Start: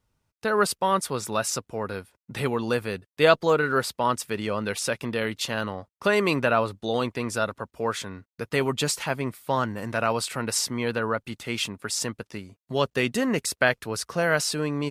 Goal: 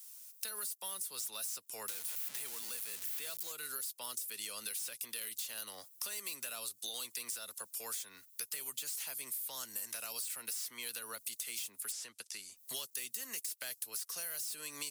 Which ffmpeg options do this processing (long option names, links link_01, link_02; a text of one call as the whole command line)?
ffmpeg -i in.wav -filter_complex "[0:a]asettb=1/sr,asplit=3[link_01][link_02][link_03];[link_01]atrim=end=1.884[link_04];[link_02]atrim=start=1.88:end=3.52,asetpts=PTS-STARTPTS,afade=type=in:duration=0.004:curve=qsin,afade=type=out:start_time=1.636:duration=0.004:curve=qsin,aeval=exprs='val(0)+0.5*0.0562*sgn(val(0))':channel_layout=same[link_05];[link_03]atrim=start=3.516[link_06];[link_04][link_05]acrossfade=duration=0.004:curve1=hsin:curve2=qsin[link_07];[link_07][link_06]acrossfade=duration=0.004:curve1=qsin:curve2=hsin,crystalizer=i=5.5:c=0,acrossover=split=330|530|2400[link_08][link_09][link_10][link_11];[link_11]asoftclip=type=tanh:threshold=-27.5dB[link_12];[link_08][link_09][link_10][link_12]amix=inputs=4:normalize=0,acrossover=split=200|630|4100[link_13][link_14][link_15][link_16];[link_13]acompressor=threshold=-37dB:ratio=4[link_17];[link_14]acompressor=threshold=-33dB:ratio=4[link_18];[link_15]acompressor=threshold=-40dB:ratio=4[link_19];[link_16]acompressor=threshold=-39dB:ratio=4[link_20];[link_17][link_18][link_19][link_20]amix=inputs=4:normalize=0,aderivative,acompressor=threshold=-55dB:ratio=4,asettb=1/sr,asplit=3[link_21][link_22][link_23];[link_21]atrim=end=11.924[link_24];[link_22]atrim=start=11.92:end=12.57,asetpts=PTS-STARTPTS,afade=type=in:duration=0.004:curve=qsin,afade=type=out:start_time=0.646:duration=0.004:curve=qsin,lowpass=8300[link_25];[link_23]atrim=start=12.566[link_26];[link_24][link_25]acrossfade=duration=0.004:curve1=hsin:curve2=qsin[link_27];[link_27][link_26]acrossfade=duration=0.004:curve1=qsin:curve2=hsin,volume=13.5dB" out.wav